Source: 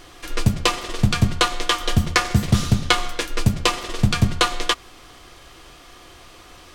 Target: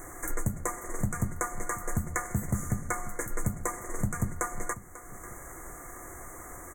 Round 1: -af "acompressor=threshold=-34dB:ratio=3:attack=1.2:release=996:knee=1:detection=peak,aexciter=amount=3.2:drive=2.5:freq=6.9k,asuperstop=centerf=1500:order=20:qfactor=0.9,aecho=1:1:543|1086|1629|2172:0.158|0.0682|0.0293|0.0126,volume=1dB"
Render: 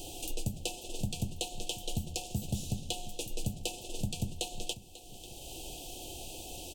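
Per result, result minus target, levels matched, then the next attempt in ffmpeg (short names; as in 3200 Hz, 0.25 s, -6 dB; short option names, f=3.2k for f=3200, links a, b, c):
2000 Hz band -7.5 dB; compressor: peak gain reduction +4.5 dB
-af "acompressor=threshold=-34dB:ratio=3:attack=1.2:release=996:knee=1:detection=peak,aexciter=amount=3.2:drive=2.5:freq=6.9k,asuperstop=centerf=3700:order=20:qfactor=0.9,aecho=1:1:543|1086|1629|2172:0.158|0.0682|0.0293|0.0126,volume=1dB"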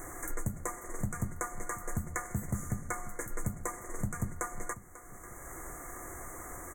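compressor: peak gain reduction +4.5 dB
-af "acompressor=threshold=-27dB:ratio=3:attack=1.2:release=996:knee=1:detection=peak,aexciter=amount=3.2:drive=2.5:freq=6.9k,asuperstop=centerf=3700:order=20:qfactor=0.9,aecho=1:1:543|1086|1629|2172:0.158|0.0682|0.0293|0.0126,volume=1dB"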